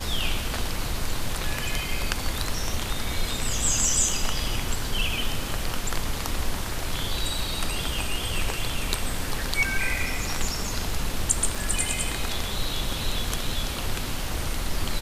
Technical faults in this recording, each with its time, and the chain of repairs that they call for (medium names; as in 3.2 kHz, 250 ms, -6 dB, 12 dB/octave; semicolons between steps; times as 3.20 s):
11.55 s: dropout 4.1 ms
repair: interpolate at 11.55 s, 4.1 ms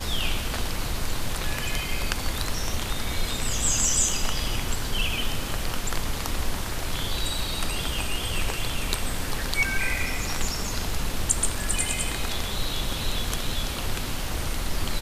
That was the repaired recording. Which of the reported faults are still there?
nothing left